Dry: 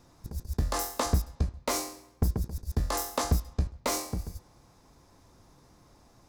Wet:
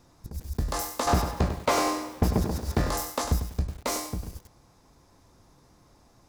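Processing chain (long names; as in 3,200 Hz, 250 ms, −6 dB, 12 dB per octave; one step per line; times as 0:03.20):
0:01.07–0:02.90: mid-hump overdrive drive 30 dB, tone 1,200 Hz, clips at −10.5 dBFS
feedback echo at a low word length 98 ms, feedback 35%, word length 7 bits, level −8.5 dB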